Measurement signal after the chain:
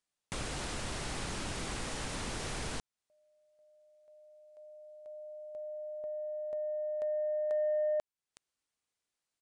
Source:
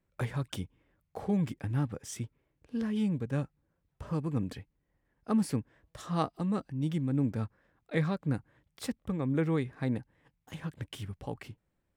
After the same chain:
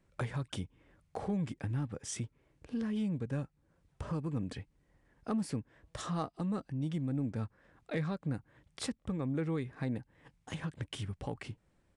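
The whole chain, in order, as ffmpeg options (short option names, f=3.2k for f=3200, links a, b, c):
-af "acompressor=threshold=-48dB:ratio=2,asoftclip=type=tanh:threshold=-31dB,aresample=22050,aresample=44100,volume=7.5dB"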